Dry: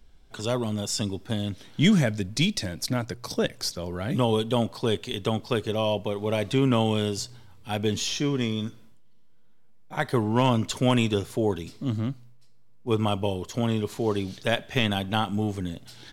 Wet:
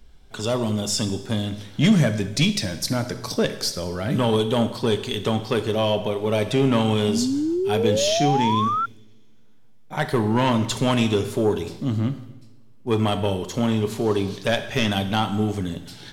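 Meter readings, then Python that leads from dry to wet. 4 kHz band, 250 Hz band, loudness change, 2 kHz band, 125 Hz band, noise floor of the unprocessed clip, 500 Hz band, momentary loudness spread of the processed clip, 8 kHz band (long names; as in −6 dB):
+3.5 dB, +4.0 dB, +4.0 dB, +3.0 dB, +3.0 dB, −48 dBFS, +4.5 dB, 8 LU, +4.5 dB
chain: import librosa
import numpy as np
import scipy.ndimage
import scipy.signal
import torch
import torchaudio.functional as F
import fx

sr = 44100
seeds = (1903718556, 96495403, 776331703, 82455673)

y = 10.0 ** (-16.0 / 20.0) * np.tanh(x / 10.0 ** (-16.0 / 20.0))
y = fx.rev_double_slope(y, sr, seeds[0], early_s=0.92, late_s=2.8, knee_db=-23, drr_db=8.5)
y = fx.spec_paint(y, sr, seeds[1], shape='rise', start_s=7.08, length_s=1.78, low_hz=210.0, high_hz=1400.0, level_db=-27.0)
y = y * 10.0 ** (4.5 / 20.0)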